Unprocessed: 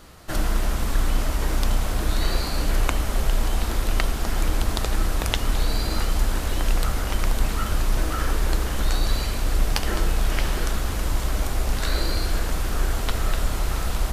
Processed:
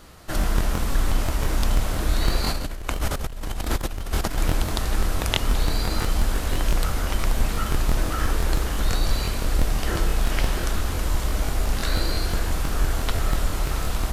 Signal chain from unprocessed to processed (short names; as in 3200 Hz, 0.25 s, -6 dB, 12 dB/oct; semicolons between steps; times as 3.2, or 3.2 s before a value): 2.44–4.39 negative-ratio compressor -24 dBFS, ratio -0.5; crackling interface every 0.17 s, samples 1024, repeat, from 0.39